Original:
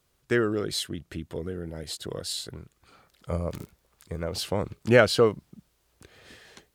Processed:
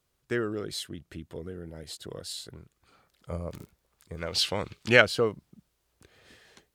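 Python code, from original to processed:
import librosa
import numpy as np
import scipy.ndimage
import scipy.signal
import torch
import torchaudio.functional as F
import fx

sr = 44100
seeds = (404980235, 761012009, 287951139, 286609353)

y = fx.peak_eq(x, sr, hz=3400.0, db=14.0, octaves=2.7, at=(4.17, 5.02))
y = F.gain(torch.from_numpy(y), -5.5).numpy()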